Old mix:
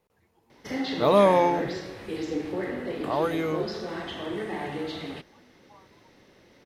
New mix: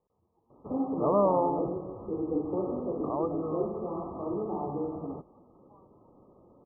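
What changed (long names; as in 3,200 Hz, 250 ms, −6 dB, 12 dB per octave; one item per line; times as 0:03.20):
speech −6.0 dB
master: add linear-phase brick-wall low-pass 1,300 Hz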